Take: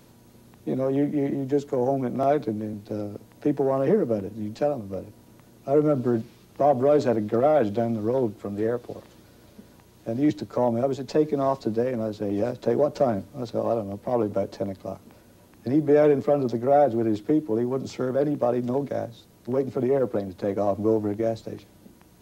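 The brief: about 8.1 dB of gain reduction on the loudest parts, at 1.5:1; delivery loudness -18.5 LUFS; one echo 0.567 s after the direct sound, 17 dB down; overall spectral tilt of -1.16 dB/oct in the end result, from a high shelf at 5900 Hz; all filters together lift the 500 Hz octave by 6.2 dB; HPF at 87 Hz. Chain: HPF 87 Hz; bell 500 Hz +7.5 dB; high shelf 5900 Hz -5 dB; compressor 1.5:1, threshold -32 dBFS; echo 0.567 s -17 dB; gain +8 dB

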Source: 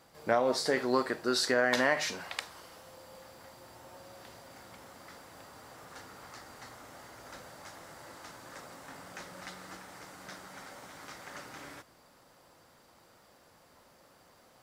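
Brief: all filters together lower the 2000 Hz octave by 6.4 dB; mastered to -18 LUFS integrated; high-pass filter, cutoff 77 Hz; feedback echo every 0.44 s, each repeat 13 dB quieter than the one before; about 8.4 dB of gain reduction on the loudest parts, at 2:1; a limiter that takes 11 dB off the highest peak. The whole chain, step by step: HPF 77 Hz; bell 2000 Hz -8 dB; compressor 2:1, threshold -39 dBFS; limiter -30.5 dBFS; feedback echo 0.44 s, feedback 22%, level -13 dB; gain +28.5 dB

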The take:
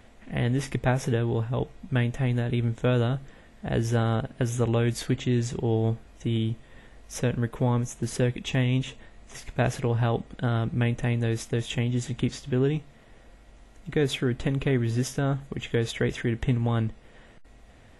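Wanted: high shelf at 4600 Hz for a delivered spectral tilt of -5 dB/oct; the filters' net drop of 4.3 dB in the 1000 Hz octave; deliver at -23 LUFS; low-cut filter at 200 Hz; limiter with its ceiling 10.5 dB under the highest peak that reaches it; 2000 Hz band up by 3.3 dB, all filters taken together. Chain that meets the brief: HPF 200 Hz; bell 1000 Hz -8 dB; bell 2000 Hz +8 dB; high shelf 4600 Hz -8 dB; gain +10.5 dB; limiter -9.5 dBFS

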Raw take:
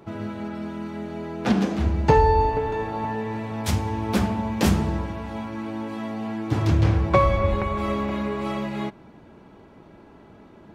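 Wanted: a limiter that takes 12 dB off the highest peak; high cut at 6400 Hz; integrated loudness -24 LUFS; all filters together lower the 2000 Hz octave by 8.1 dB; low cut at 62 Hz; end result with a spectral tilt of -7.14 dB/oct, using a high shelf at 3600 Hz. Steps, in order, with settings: HPF 62 Hz; LPF 6400 Hz; bell 2000 Hz -7.5 dB; high shelf 3600 Hz -9 dB; gain +4 dB; limiter -12.5 dBFS

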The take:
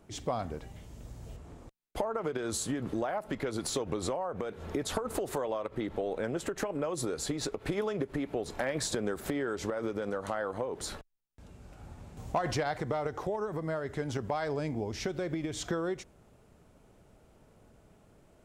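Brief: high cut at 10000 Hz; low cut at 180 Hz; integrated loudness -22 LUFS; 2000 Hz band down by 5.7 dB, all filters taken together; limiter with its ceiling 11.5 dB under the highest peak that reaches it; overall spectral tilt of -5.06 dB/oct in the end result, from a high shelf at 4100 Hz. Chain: HPF 180 Hz; LPF 10000 Hz; bell 2000 Hz -6 dB; high shelf 4100 Hz -8.5 dB; gain +16 dB; limiter -11.5 dBFS

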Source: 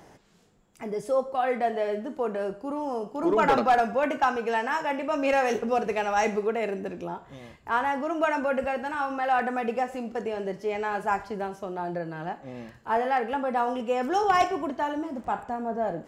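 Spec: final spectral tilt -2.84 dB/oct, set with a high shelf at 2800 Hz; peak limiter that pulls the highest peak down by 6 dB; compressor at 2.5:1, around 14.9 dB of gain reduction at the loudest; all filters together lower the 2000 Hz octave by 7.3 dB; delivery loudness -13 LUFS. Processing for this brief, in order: bell 2000 Hz -8.5 dB; high shelf 2800 Hz -4 dB; compressor 2.5:1, threshold -42 dBFS; gain +29 dB; limiter -4 dBFS

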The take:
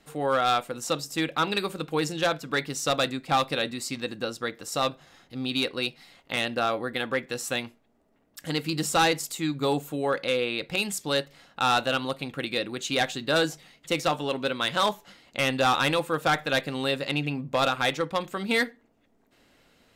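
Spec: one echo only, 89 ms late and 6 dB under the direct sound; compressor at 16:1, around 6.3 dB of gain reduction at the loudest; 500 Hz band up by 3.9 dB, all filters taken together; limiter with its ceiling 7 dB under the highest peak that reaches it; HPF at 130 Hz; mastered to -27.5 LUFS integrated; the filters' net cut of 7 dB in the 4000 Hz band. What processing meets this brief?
HPF 130 Hz; bell 500 Hz +4.5 dB; bell 4000 Hz -8.5 dB; compressor 16:1, threshold -23 dBFS; limiter -20 dBFS; echo 89 ms -6 dB; gain +3 dB

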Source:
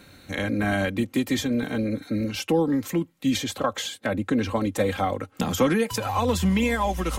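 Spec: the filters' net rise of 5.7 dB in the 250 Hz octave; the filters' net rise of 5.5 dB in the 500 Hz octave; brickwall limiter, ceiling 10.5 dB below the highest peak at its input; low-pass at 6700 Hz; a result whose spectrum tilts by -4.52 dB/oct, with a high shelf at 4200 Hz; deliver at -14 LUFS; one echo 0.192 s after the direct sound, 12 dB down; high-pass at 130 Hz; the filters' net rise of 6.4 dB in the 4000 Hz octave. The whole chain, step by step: HPF 130 Hz; LPF 6700 Hz; bell 250 Hz +6 dB; bell 500 Hz +4.5 dB; bell 4000 Hz +4 dB; high shelf 4200 Hz +8.5 dB; limiter -14 dBFS; echo 0.192 s -12 dB; gain +9 dB

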